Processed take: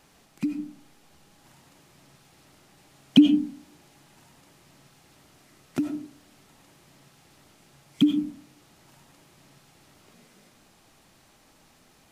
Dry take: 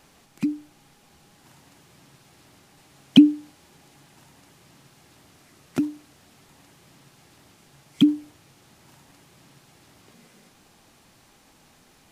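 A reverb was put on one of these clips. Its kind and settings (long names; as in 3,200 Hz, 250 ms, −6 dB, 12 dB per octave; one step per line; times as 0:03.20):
comb and all-pass reverb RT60 0.45 s, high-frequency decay 0.35×, pre-delay 50 ms, DRR 6.5 dB
level −3 dB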